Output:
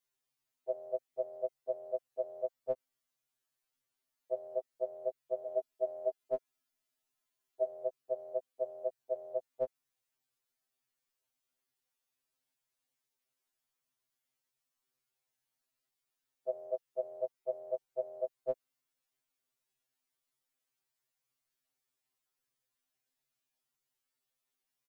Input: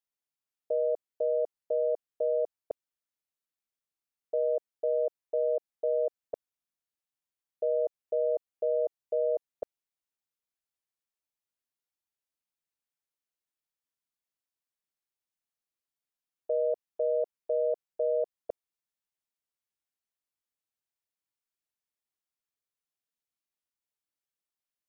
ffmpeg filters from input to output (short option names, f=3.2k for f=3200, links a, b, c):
-filter_complex "[0:a]asplit=3[a][b][c];[a]afade=t=out:st=5.45:d=0.02[d];[b]aecho=1:1:4.8:0.55,afade=t=in:st=5.45:d=0.02,afade=t=out:st=7.64:d=0.02[e];[c]afade=t=in:st=7.64:d=0.02[f];[d][e][f]amix=inputs=3:normalize=0,afftfilt=real='re*2.45*eq(mod(b,6),0)':imag='im*2.45*eq(mod(b,6),0)':win_size=2048:overlap=0.75,volume=7dB"